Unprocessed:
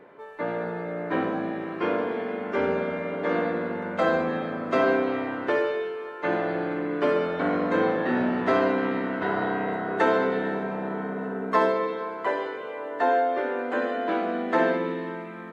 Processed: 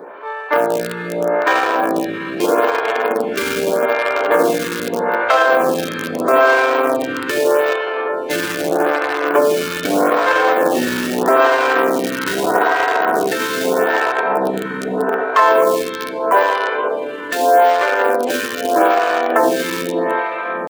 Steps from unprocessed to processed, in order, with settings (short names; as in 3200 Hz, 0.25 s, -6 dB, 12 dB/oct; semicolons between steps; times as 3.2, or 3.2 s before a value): dynamic EQ 210 Hz, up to -6 dB, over -44 dBFS, Q 2.4; in parallel at -10.5 dB: bit-crush 4-bit; on the sum: compressor 3:1, threshold -27 dBFS, peak gain reduction 9.5 dB; HPF 150 Hz 6 dB/oct; tempo 0.75×; low shelf 480 Hz -8 dB; notch 2000 Hz, Q 11; on a send: analogue delay 0.254 s, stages 2048, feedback 84%, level -16 dB; on the sum: maximiser +21 dB; photocell phaser 0.8 Hz